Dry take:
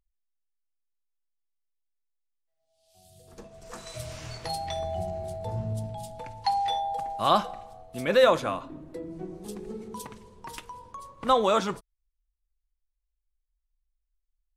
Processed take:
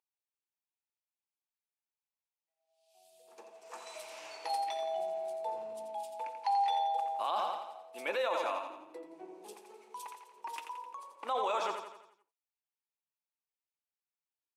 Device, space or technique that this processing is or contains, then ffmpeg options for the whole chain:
laptop speaker: -filter_complex "[0:a]asettb=1/sr,asplit=3[a][b][c];[a]atrim=end=9.534[d];[b]atrim=start=9.53:end=10.34,asetpts=PTS-STARTPTS,afade=t=in:d=0.004:c=qsin,afade=t=out:st=0.806:d=0.004:c=qsin,equalizer=f=240:t=o:w=1.9:g=-13.5[e];[c]atrim=start=10.336[f];[d][e]acrossfade=d=0.004:c1=hsin:c2=qsin[g];[g][f]acrossfade=d=0.004:c1=qsin:c2=hsin,highpass=f=350:w=0.5412,highpass=f=350:w=1.3066,equalizer=f=880:t=o:w=0.46:g=11,equalizer=f=2.5k:t=o:w=0.43:g=8,aecho=1:1:86|172|258|344|430|516:0.398|0.199|0.0995|0.0498|0.0249|0.0124,alimiter=limit=-15.5dB:level=0:latency=1:release=35,volume=-8.5dB"

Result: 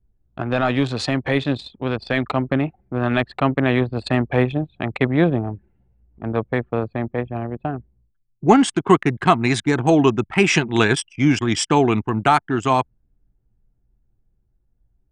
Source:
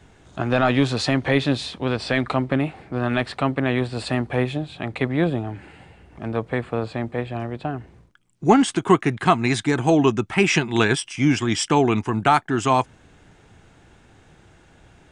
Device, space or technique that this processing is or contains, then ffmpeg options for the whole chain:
voice memo with heavy noise removal: -af "anlmdn=100,dynaudnorm=f=340:g=17:m=11.5dB,volume=-1dB"

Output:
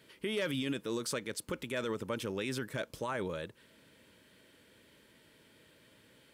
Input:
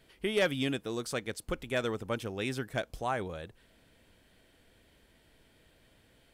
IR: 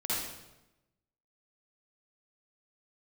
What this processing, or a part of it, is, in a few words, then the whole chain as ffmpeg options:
PA system with an anti-feedback notch: -af "highpass=130,asuperstop=centerf=730:order=4:qfactor=4.2,alimiter=level_in=5dB:limit=-24dB:level=0:latency=1:release=33,volume=-5dB,volume=3dB"

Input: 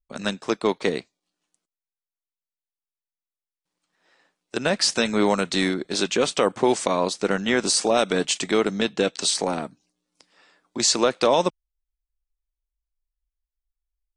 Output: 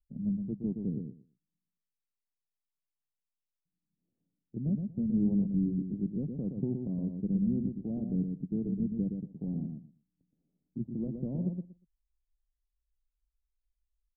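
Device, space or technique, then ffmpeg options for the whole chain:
the neighbour's flat through the wall: -filter_complex "[0:a]asplit=3[a][b][c];[a]afade=t=out:st=8.43:d=0.02[d];[b]agate=range=-13dB:threshold=-26dB:ratio=16:detection=peak,afade=t=in:st=8.43:d=0.02,afade=t=out:st=8.87:d=0.02[e];[c]afade=t=in:st=8.87:d=0.02[f];[d][e][f]amix=inputs=3:normalize=0,lowpass=f=210:w=0.5412,lowpass=f=210:w=1.3066,equalizer=f=140:t=o:w=0.77:g=3.5,equalizer=f=740:t=o:w=0.79:g=8,asplit=2[g][h];[h]adelay=119,lowpass=f=2k:p=1,volume=-5.5dB,asplit=2[i][j];[j]adelay=119,lowpass=f=2k:p=1,volume=0.17,asplit=2[k][l];[l]adelay=119,lowpass=f=2k:p=1,volume=0.17[m];[g][i][k][m]amix=inputs=4:normalize=0"

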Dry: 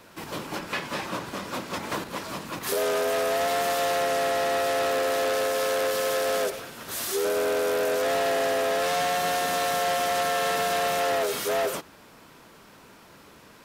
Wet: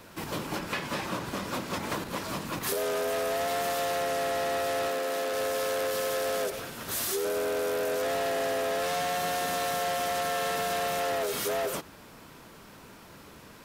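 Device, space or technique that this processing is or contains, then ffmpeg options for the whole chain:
ASMR close-microphone chain: -filter_complex "[0:a]asettb=1/sr,asplit=3[a][b][c];[a]atrim=end=4.884[d];[b]atrim=start=4.88:end=5.33,asetpts=PTS-STARTPTS,afade=t=in:d=0.004:c=qsin,afade=t=out:st=0.446:d=0.004:c=qsin,highpass=f=140:w=0.5412,highpass=f=140:w=1.3066[e];[c]atrim=start=5.326[f];[d][e]acrossfade=d=0.004:c1=hsin:c2=qsin[g];[g][f]acrossfade=d=0.004:c1=qsin:c2=hsin,lowshelf=f=180:g=6,acompressor=threshold=-28dB:ratio=6,highshelf=f=10k:g=3.5"

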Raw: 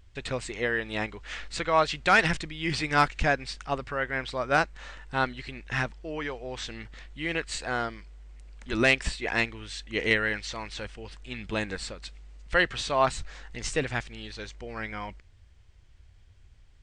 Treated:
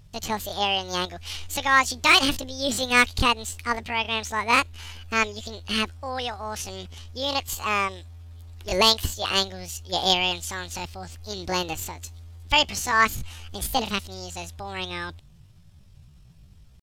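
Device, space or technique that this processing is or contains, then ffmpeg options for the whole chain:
chipmunk voice: -filter_complex "[0:a]asettb=1/sr,asplit=3[a][b][c];[a]atrim=end=7.314[d];[b]atrim=start=7.31:end=7.95,asetpts=PTS-STARTPTS,afade=t=in:d=0.004:c=qsin,afade=t=out:st=0.636:d=0.004:c=qsin,equalizer=f=670:t=o:w=0.24:g=7.5[e];[c]atrim=start=7.946[f];[d][e]acrossfade=d=0.004:c1=hsin:c2=qsin[g];[g][f]acrossfade=d=0.004:c1=qsin:c2=hsin,asetrate=74167,aresample=44100,atempo=0.594604,volume=4dB"

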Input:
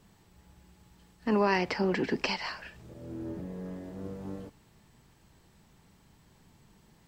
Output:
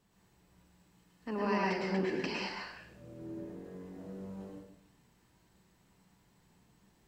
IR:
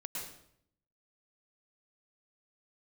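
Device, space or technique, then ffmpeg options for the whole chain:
bathroom: -filter_complex "[1:a]atrim=start_sample=2205[a];[0:a][a]afir=irnorm=-1:irlink=0,lowshelf=f=140:g=-5,volume=-5dB"

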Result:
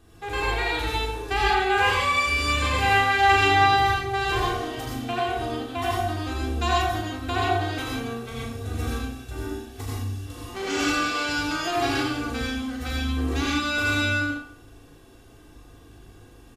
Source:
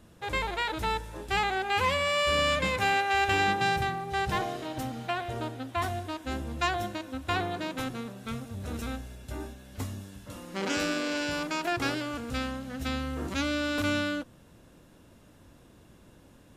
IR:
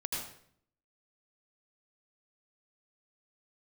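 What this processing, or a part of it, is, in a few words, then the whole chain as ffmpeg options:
microphone above a desk: -filter_complex "[0:a]aecho=1:1:2.6:0.71,asplit=2[a][b];[b]adelay=39,volume=-5.5dB[c];[a][c]amix=inputs=2:normalize=0[d];[1:a]atrim=start_sample=2205[e];[d][e]afir=irnorm=-1:irlink=0"

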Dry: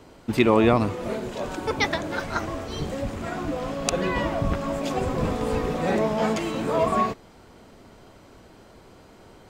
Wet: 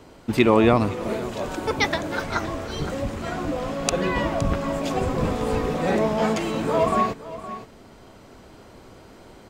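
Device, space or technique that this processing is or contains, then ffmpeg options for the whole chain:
ducked delay: -filter_complex "[0:a]asplit=3[a][b][c];[b]adelay=516,volume=-3.5dB[d];[c]apad=whole_len=441701[e];[d][e]sidechaincompress=threshold=-31dB:ratio=6:attack=6.2:release=1480[f];[a][f]amix=inputs=2:normalize=0,asettb=1/sr,asplit=3[g][h][i];[g]atrim=end=1.084[j];[h]atrim=start=1.08:end=2.23,asetpts=PTS-STARTPTS,afade=t=in:d=0.004:c=qsin,afade=t=out:st=1.146:d=0.004:c=qsin,highshelf=f=12k:g=4.5[k];[i]atrim=start=2.226[l];[j][k]acrossfade=d=0.004:c1=hsin:c2=qsin[m];[m][l]acrossfade=d=0.004:c1=qsin:c2=hsin,volume=1.5dB"

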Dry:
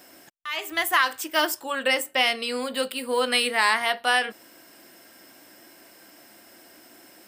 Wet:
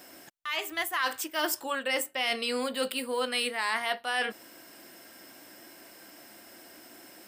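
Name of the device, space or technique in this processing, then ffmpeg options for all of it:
compression on the reversed sound: -af "areverse,acompressor=threshold=-26dB:ratio=6,areverse"

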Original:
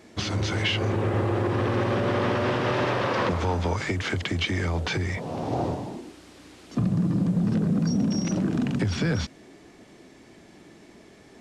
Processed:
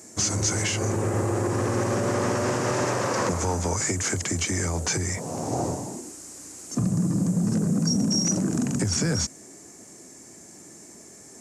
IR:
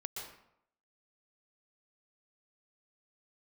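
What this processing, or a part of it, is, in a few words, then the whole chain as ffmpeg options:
budget condenser microphone: -af "highpass=72,highshelf=f=5k:t=q:w=3:g=13.5"

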